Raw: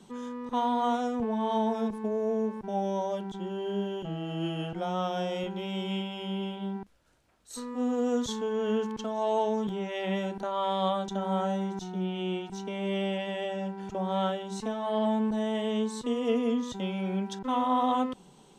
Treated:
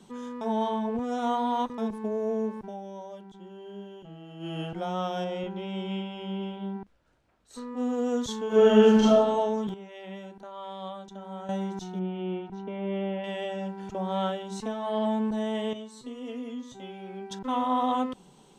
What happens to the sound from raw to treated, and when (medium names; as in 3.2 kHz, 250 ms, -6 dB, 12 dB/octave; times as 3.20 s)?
0.41–1.78 s: reverse
2.60–4.56 s: dip -10.5 dB, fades 0.17 s
5.24–7.77 s: low-pass 2.6 kHz 6 dB/octave
8.47–9.12 s: reverb throw, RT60 1.1 s, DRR -12 dB
9.74–11.49 s: gain -10.5 dB
11.99–13.24 s: Bessel low-pass 1.6 kHz
15.73–17.31 s: feedback comb 130 Hz, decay 0.2 s, mix 90%